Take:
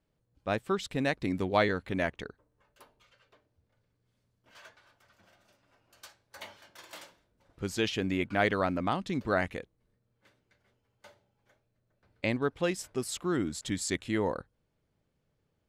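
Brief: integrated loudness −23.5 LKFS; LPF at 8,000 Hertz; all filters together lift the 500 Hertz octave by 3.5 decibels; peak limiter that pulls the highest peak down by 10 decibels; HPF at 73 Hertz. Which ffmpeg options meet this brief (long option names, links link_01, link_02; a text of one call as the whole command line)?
ffmpeg -i in.wav -af "highpass=73,lowpass=8000,equalizer=frequency=500:width_type=o:gain=4.5,volume=9dB,alimiter=limit=-10.5dB:level=0:latency=1" out.wav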